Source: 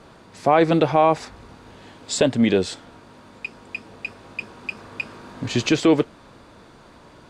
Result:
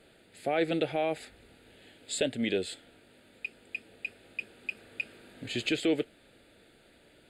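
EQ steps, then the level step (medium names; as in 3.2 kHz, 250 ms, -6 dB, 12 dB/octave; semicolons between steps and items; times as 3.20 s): tone controls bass -15 dB, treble +8 dB; bass shelf 130 Hz +9 dB; static phaser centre 2.5 kHz, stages 4; -7.0 dB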